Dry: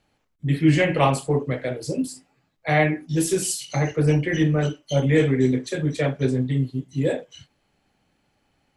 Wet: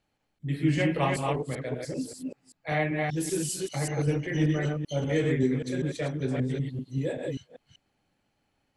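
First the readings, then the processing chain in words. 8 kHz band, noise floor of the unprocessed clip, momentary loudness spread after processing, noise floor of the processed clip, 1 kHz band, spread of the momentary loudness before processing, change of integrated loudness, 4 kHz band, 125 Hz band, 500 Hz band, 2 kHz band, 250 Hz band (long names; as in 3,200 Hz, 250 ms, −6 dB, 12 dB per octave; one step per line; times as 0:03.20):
−6.5 dB, −70 dBFS, 9 LU, −77 dBFS, −6.5 dB, 9 LU, −6.5 dB, −6.5 dB, −6.5 dB, −6.5 dB, −6.5 dB, −6.5 dB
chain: delay that plays each chunk backwards 194 ms, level −2.5 dB
level −8.5 dB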